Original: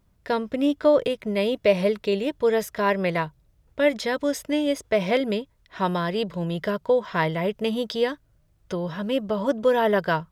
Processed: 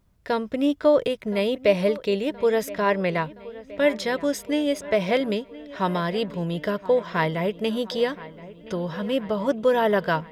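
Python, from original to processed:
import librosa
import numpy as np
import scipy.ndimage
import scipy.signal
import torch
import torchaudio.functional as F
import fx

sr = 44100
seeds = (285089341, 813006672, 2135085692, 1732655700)

p1 = fx.high_shelf(x, sr, hz=9700.0, db=-9.0, at=(2.74, 3.25))
y = p1 + fx.echo_wet_lowpass(p1, sr, ms=1021, feedback_pct=63, hz=3400.0, wet_db=-18, dry=0)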